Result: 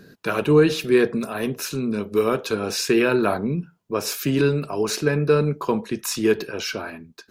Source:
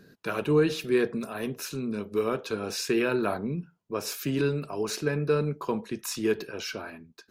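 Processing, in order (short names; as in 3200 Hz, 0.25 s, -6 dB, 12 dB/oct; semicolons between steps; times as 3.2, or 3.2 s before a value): 2.15–2.55 high shelf 7800 Hz +6 dB; gain +7 dB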